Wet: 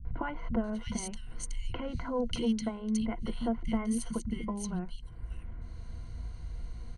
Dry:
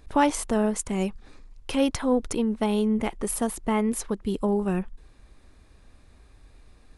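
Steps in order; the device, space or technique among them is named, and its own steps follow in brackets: jukebox (LPF 7000 Hz 12 dB/oct; resonant low shelf 240 Hz +7.5 dB, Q 1.5; compressor 4:1, threshold -35 dBFS, peak gain reduction 16 dB); ripple EQ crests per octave 1.9, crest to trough 14 dB; three bands offset in time lows, mids, highs 50/640 ms, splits 200/2300 Hz; gain +3 dB

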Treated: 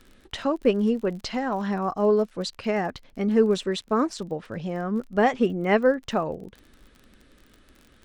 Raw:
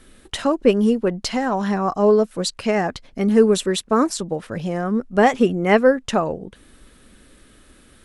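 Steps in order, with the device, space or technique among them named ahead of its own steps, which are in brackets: lo-fi chain (LPF 5200 Hz 12 dB/oct; wow and flutter 20 cents; crackle 38/s -32 dBFS); gain -5.5 dB

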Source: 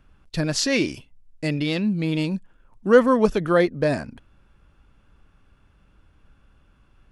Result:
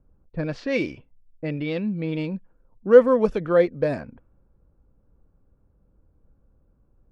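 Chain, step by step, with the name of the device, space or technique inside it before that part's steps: inside a helmet (high shelf 3800 Hz -8 dB; small resonant body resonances 500/2300 Hz, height 8 dB); low-pass opened by the level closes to 620 Hz, open at -14.5 dBFS; high shelf 6200 Hz -5 dB; gain -4 dB

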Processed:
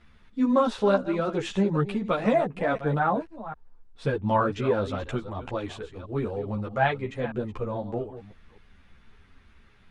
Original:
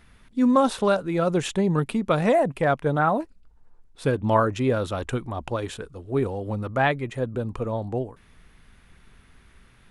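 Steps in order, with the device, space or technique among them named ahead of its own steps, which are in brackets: reverse delay 0.252 s, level -12.5 dB; string-machine ensemble chorus (ensemble effect; LPF 5400 Hz 12 dB/oct)

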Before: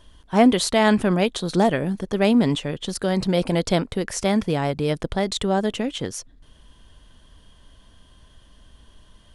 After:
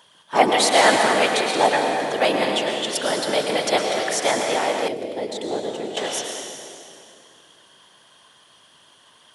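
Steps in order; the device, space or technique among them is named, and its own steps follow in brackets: whispering ghost (whisperiser; HPF 600 Hz 12 dB/oct; reverb RT60 2.5 s, pre-delay 99 ms, DRR 1.5 dB); 4.88–5.97 EQ curve 410 Hz 0 dB, 1200 Hz -18 dB, 2700 Hz -12 dB; gain +4.5 dB

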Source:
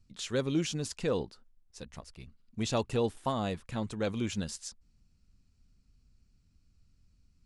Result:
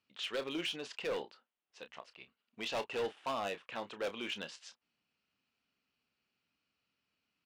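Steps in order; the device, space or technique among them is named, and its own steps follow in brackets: megaphone (BPF 550–2900 Hz; bell 2900 Hz +8 dB 0.53 oct; hard clip -33 dBFS, distortion -9 dB; doubler 30 ms -11.5 dB); gain +1 dB

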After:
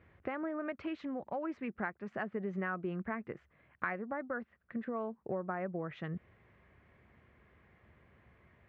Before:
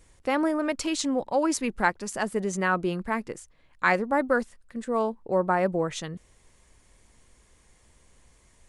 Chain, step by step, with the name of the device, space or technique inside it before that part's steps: bass amplifier (compressor 5:1, threshold -35 dBFS, peak gain reduction 16.5 dB; speaker cabinet 75–2200 Hz, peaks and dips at 280 Hz -5 dB, 500 Hz -5 dB, 920 Hz -7 dB); gain +2 dB

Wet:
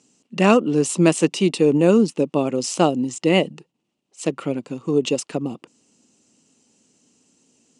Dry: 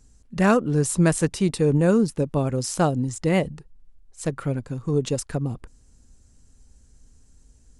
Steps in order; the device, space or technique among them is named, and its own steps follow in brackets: television speaker (speaker cabinet 190–8500 Hz, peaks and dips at 330 Hz +4 dB, 1600 Hz -9 dB, 2800 Hz +10 dB); gain +4 dB

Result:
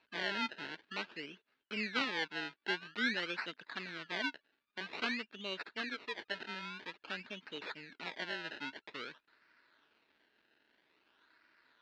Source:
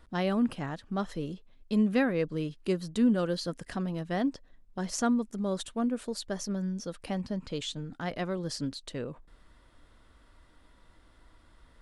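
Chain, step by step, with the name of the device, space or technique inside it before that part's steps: 5.81–6.43 comb 6.7 ms, depth 49%; circuit-bent sampling toy (decimation with a swept rate 26×, swing 100% 0.5 Hz; speaker cabinet 520–4300 Hz, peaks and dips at 530 Hz -10 dB, 750 Hz -9 dB, 1100 Hz -6 dB, 1600 Hz +7 dB, 2700 Hz +5 dB, 4100 Hz +5 dB); gain -2.5 dB

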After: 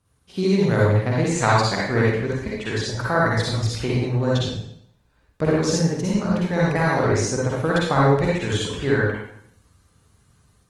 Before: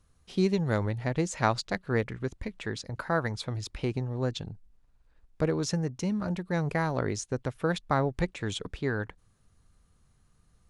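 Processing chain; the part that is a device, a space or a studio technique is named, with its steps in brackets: far-field microphone of a smart speaker (reverb RT60 0.70 s, pre-delay 46 ms, DRR -5.5 dB; HPF 84 Hz 12 dB/oct; AGC gain up to 4 dB; Opus 24 kbps 48000 Hz)

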